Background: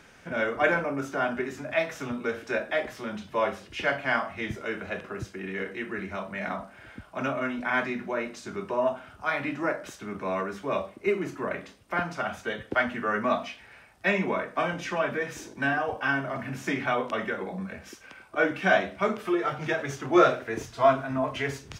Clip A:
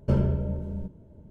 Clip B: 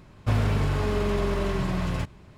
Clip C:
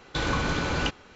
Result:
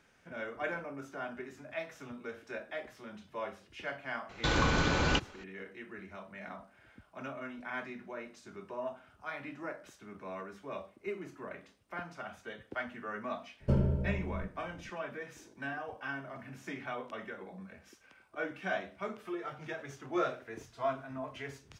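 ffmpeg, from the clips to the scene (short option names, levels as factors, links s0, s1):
-filter_complex "[0:a]volume=0.224[s0];[3:a]atrim=end=1.15,asetpts=PTS-STARTPTS,volume=0.841,afade=t=in:d=0.004:c=hsin,afade=t=out:st=1.146:d=0.004:c=hsin,adelay=189189S[s1];[1:a]atrim=end=1.3,asetpts=PTS-STARTPTS,volume=0.562,afade=t=in:d=0.004:c=hsin,afade=t=out:st=1.296:d=0.004:c=hsin,adelay=13600[s2];[s0][s1][s2]amix=inputs=3:normalize=0"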